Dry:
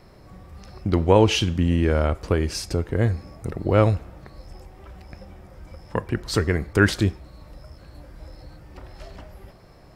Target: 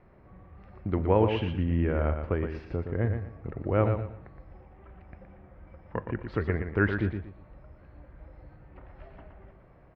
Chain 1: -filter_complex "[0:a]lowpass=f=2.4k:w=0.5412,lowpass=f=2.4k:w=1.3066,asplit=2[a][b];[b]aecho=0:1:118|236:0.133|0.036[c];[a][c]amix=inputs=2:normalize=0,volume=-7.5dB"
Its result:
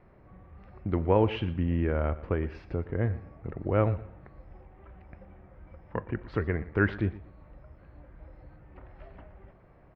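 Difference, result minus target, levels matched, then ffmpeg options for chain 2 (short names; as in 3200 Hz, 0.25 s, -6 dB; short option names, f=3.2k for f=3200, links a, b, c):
echo-to-direct -10.5 dB
-filter_complex "[0:a]lowpass=f=2.4k:w=0.5412,lowpass=f=2.4k:w=1.3066,asplit=2[a][b];[b]aecho=0:1:118|236|354:0.447|0.121|0.0326[c];[a][c]amix=inputs=2:normalize=0,volume=-7.5dB"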